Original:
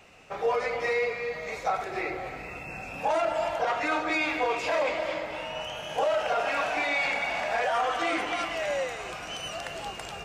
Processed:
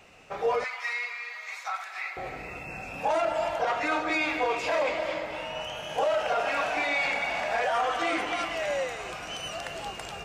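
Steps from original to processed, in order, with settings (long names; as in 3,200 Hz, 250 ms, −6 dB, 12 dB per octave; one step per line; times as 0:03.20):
0:00.64–0:02.17: high-pass filter 1,000 Hz 24 dB per octave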